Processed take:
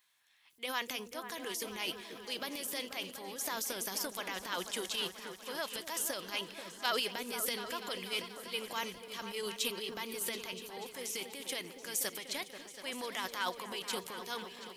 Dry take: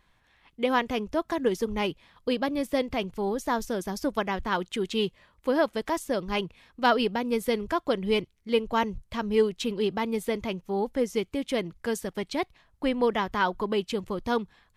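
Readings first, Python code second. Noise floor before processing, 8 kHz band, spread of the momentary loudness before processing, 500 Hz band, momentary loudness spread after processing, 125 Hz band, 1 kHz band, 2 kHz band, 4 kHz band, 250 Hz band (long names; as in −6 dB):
−66 dBFS, +5.5 dB, 6 LU, −15.5 dB, 7 LU, −17.5 dB, −12.0 dB, −6.5 dB, −1.5 dB, −18.0 dB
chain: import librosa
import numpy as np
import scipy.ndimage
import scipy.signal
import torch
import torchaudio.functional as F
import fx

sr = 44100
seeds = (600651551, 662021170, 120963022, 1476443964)

y = np.diff(x, prepend=0.0)
y = fx.transient(y, sr, attack_db=-1, sustain_db=11)
y = fx.echo_opening(y, sr, ms=243, hz=400, octaves=2, feedback_pct=70, wet_db=-6)
y = F.gain(torch.from_numpy(y), 4.0).numpy()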